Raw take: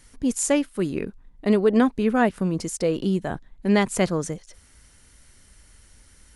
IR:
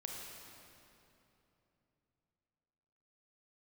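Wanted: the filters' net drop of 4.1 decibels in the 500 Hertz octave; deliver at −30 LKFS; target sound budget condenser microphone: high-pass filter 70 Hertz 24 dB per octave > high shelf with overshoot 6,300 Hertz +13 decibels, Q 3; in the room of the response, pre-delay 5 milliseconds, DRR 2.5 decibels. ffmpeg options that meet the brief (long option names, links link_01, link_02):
-filter_complex "[0:a]equalizer=frequency=500:width_type=o:gain=-5,asplit=2[link_01][link_02];[1:a]atrim=start_sample=2205,adelay=5[link_03];[link_02][link_03]afir=irnorm=-1:irlink=0,volume=-1.5dB[link_04];[link_01][link_04]amix=inputs=2:normalize=0,highpass=frequency=70:width=0.5412,highpass=frequency=70:width=1.3066,highshelf=frequency=6300:width_type=q:width=3:gain=13,volume=-14dB"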